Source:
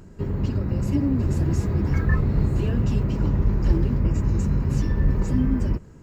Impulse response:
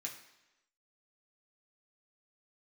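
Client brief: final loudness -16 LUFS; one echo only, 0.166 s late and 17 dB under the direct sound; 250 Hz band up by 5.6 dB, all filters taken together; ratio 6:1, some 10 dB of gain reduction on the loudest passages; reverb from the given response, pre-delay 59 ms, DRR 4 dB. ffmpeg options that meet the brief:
-filter_complex "[0:a]equalizer=f=250:t=o:g=7,acompressor=threshold=-24dB:ratio=6,aecho=1:1:166:0.141,asplit=2[a][b];[1:a]atrim=start_sample=2205,adelay=59[c];[b][c]afir=irnorm=-1:irlink=0,volume=-2dB[d];[a][d]amix=inputs=2:normalize=0,volume=11.5dB"

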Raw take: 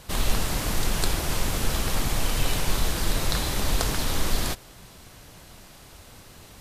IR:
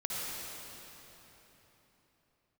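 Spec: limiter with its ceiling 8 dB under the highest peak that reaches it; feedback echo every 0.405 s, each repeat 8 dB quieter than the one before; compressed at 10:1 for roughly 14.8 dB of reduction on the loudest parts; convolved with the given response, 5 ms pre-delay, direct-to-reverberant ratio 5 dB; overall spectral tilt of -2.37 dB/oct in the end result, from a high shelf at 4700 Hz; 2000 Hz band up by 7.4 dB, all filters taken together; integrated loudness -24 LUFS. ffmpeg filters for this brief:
-filter_complex "[0:a]equalizer=f=2k:t=o:g=8,highshelf=f=4.7k:g=7,acompressor=threshold=-31dB:ratio=10,alimiter=level_in=2dB:limit=-24dB:level=0:latency=1,volume=-2dB,aecho=1:1:405|810|1215|1620|2025:0.398|0.159|0.0637|0.0255|0.0102,asplit=2[a][b];[1:a]atrim=start_sample=2205,adelay=5[c];[b][c]afir=irnorm=-1:irlink=0,volume=-10dB[d];[a][d]amix=inputs=2:normalize=0,volume=12dB"

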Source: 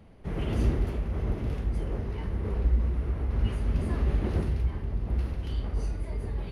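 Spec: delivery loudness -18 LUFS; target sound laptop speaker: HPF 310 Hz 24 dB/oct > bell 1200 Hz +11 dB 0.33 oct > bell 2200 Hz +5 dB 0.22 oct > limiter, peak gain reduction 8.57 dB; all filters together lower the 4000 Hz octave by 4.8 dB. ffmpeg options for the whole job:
-af "highpass=f=310:w=0.5412,highpass=f=310:w=1.3066,equalizer=f=1.2k:t=o:w=0.33:g=11,equalizer=f=2.2k:t=o:w=0.22:g=5,equalizer=f=4k:t=o:g=-8,volume=25dB,alimiter=limit=-8dB:level=0:latency=1"

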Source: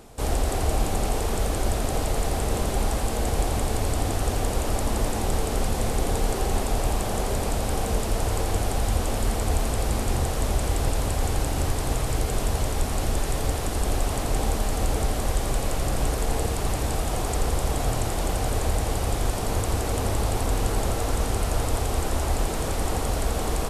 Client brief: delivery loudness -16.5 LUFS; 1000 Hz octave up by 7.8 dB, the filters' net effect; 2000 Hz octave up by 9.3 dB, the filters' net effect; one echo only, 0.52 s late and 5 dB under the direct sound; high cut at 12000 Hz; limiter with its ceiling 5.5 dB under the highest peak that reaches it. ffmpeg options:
-af "lowpass=12k,equalizer=f=1k:t=o:g=8.5,equalizer=f=2k:t=o:g=9,alimiter=limit=-14.5dB:level=0:latency=1,aecho=1:1:520:0.562,volume=7.5dB"

